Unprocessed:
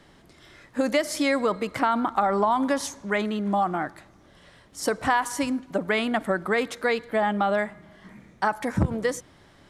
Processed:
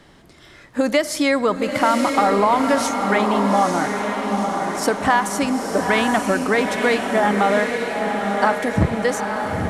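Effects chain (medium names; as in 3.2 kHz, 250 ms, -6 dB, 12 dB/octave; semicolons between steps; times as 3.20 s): echo that smears into a reverb 909 ms, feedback 58%, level -4 dB; trim +5 dB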